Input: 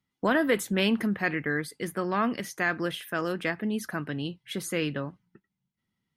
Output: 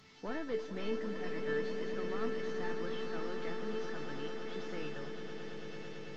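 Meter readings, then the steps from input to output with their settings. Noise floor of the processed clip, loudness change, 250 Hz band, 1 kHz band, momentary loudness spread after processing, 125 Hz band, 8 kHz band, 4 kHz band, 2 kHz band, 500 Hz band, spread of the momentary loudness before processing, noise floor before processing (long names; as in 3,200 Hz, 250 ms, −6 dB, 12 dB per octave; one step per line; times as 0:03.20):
−45 dBFS, −11.0 dB, −13.0 dB, −12.5 dB, 9 LU, −13.0 dB, −19.0 dB, −12.5 dB, −14.5 dB, −6.0 dB, 9 LU, −84 dBFS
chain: linear delta modulator 32 kbit/s, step −40 dBFS
tuned comb filter 440 Hz, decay 0.38 s, harmonics all, mix 90%
echo that builds up and dies away 111 ms, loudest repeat 8, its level −11.5 dB
level +2.5 dB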